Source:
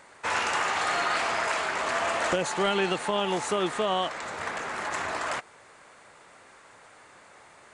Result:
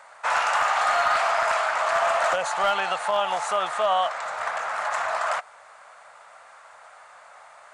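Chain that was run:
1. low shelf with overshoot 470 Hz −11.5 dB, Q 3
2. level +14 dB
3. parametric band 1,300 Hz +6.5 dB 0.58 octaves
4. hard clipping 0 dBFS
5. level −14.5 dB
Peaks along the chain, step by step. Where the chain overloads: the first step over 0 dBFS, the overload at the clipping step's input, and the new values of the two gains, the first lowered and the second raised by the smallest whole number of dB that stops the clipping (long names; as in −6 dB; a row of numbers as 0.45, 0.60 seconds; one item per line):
−11.5, +2.5, +6.0, 0.0, −14.5 dBFS
step 2, 6.0 dB
step 2 +8 dB, step 5 −8.5 dB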